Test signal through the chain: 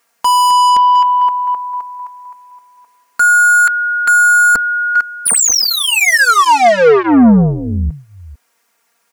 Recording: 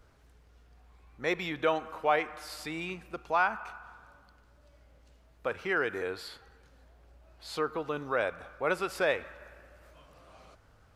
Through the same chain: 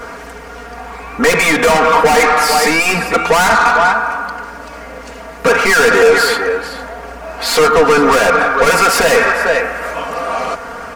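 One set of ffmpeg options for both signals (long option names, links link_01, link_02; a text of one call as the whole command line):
ffmpeg -i in.wav -filter_complex "[0:a]aecho=1:1:449:0.119,asplit=2[link_01][link_02];[link_02]highpass=frequency=720:poles=1,volume=29dB,asoftclip=type=tanh:threshold=-13dB[link_03];[link_01][link_03]amix=inputs=2:normalize=0,lowpass=frequency=3300:poles=1,volume=-6dB,asplit=2[link_04][link_05];[link_05]aeval=exprs='0.224*sin(PI/2*3.16*val(0)/0.224)':channel_layout=same,volume=-5dB[link_06];[link_04][link_06]amix=inputs=2:normalize=0,equalizer=frequency=3600:width_type=o:width=0.98:gain=-9,aecho=1:1:4.3:0.89,volume=4.5dB" out.wav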